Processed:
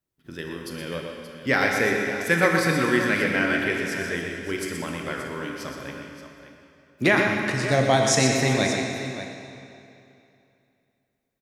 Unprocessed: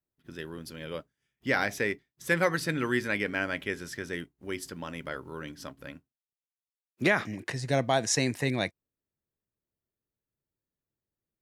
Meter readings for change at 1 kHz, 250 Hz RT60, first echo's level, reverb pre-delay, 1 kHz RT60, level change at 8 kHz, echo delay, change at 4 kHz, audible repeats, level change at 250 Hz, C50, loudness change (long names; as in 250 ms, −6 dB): +7.5 dB, 2.7 s, −7.5 dB, 24 ms, 2.7 s, +7.0 dB, 122 ms, +7.5 dB, 2, +8.0 dB, 1.0 dB, +7.0 dB